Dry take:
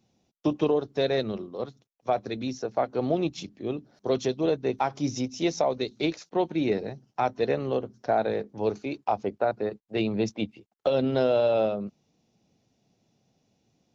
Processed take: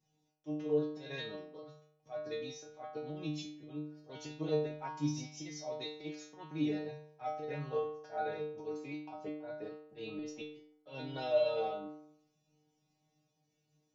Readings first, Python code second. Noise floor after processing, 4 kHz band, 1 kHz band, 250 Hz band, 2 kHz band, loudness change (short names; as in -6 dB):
-79 dBFS, -9.5 dB, -13.0 dB, -11.5 dB, -10.5 dB, -11.5 dB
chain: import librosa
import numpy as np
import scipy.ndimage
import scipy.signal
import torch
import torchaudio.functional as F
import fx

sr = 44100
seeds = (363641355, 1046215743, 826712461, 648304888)

y = fx.spec_box(x, sr, start_s=4.68, length_s=0.24, low_hz=210.0, high_hz=3100.0, gain_db=7)
y = fx.auto_swell(y, sr, attack_ms=141.0)
y = fx.stiff_resonator(y, sr, f0_hz=150.0, decay_s=0.77, stiffness=0.002)
y = y * librosa.db_to_amplitude(7.5)